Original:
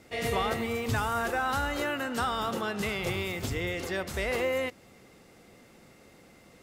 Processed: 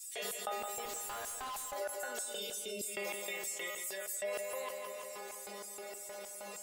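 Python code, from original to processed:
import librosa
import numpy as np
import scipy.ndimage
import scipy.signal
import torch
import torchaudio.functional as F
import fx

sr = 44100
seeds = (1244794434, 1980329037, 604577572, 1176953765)

y = fx.pre_emphasis(x, sr, coefficient=0.8, at=(3.7, 4.12))
y = fx.dereverb_blind(y, sr, rt60_s=0.55)
y = fx.high_shelf(y, sr, hz=12000.0, db=7.0)
y = fx.stiff_resonator(y, sr, f0_hz=200.0, decay_s=0.59, stiffness=0.002)
y = fx.filter_lfo_highpass(y, sr, shape='square', hz=3.2, low_hz=550.0, high_hz=8000.0, q=2.6)
y = fx.tube_stage(y, sr, drive_db=56.0, bias=0.5, at=(0.85, 1.73))
y = fx.brickwall_bandstop(y, sr, low_hz=610.0, high_hz=2000.0, at=(2.24, 2.88))
y = fx.echo_feedback(y, sr, ms=165, feedback_pct=53, wet_db=-13.0)
y = fx.env_flatten(y, sr, amount_pct=70)
y = F.gain(torch.from_numpy(y), 3.5).numpy()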